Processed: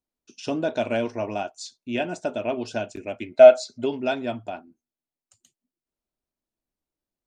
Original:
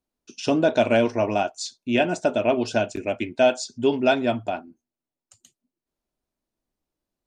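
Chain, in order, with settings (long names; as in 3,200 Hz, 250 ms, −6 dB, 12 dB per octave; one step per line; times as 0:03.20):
0:03.31–0:03.84: hollow resonant body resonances 630/1,300/2,100/4,000 Hz, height 14 dB → 18 dB, ringing for 20 ms
level −6 dB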